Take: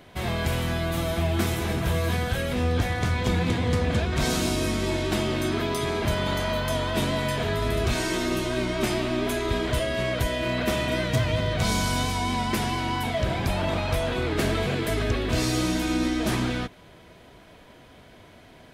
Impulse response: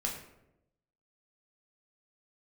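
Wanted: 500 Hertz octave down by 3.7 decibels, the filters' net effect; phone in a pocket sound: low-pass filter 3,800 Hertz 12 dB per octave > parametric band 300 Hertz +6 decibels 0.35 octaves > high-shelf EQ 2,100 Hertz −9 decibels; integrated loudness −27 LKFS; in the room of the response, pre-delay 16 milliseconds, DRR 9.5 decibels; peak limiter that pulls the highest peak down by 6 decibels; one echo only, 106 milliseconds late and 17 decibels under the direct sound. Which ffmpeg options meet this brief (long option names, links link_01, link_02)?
-filter_complex "[0:a]equalizer=frequency=500:width_type=o:gain=-5.5,alimiter=limit=-20dB:level=0:latency=1,aecho=1:1:106:0.141,asplit=2[link_01][link_02];[1:a]atrim=start_sample=2205,adelay=16[link_03];[link_02][link_03]afir=irnorm=-1:irlink=0,volume=-12.5dB[link_04];[link_01][link_04]amix=inputs=2:normalize=0,lowpass=3800,equalizer=frequency=300:width_type=o:width=0.35:gain=6,highshelf=frequency=2100:gain=-9,volume=1dB"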